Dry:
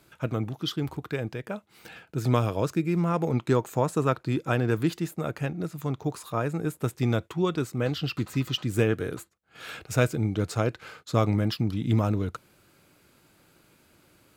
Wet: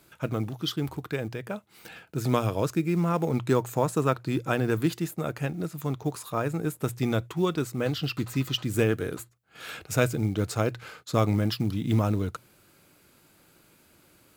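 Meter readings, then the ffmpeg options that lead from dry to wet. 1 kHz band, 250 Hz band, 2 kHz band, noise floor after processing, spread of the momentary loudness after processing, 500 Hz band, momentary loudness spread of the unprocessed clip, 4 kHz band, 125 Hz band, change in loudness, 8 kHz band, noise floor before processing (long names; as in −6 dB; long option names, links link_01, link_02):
0.0 dB, 0.0 dB, 0.0 dB, −61 dBFS, 11 LU, 0.0 dB, 10 LU, +0.5 dB, −1.0 dB, −0.5 dB, +2.5 dB, −62 dBFS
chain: -af "crystalizer=i=0.5:c=0,acrusher=bits=8:mode=log:mix=0:aa=0.000001,bandreject=frequency=60:width_type=h:width=6,bandreject=frequency=120:width_type=h:width=6"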